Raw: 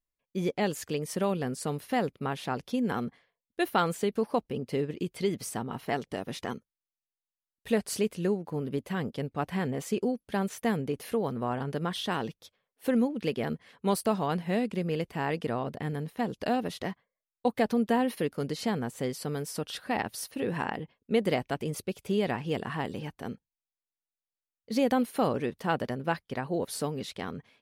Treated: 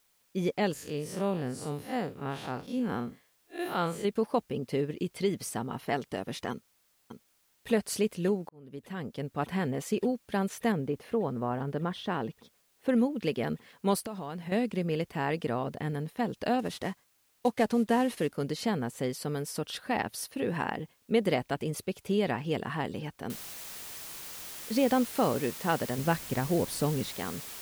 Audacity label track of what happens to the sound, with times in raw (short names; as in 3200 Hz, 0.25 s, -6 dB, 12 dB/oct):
0.730000	4.050000	time blur width 0.104 s
6.510000	7.690000	echo throw 0.59 s, feedback 85%, level -7 dB
8.490000	9.440000	fade in
10.720000	12.890000	LPF 1600 Hz 6 dB/oct
13.990000	14.520000	compressor, threshold -34 dBFS
16.590000	18.300000	CVSD 64 kbps
23.300000	23.300000	noise floor step -70 dB -43 dB
25.980000	27.090000	low shelf 200 Hz +10 dB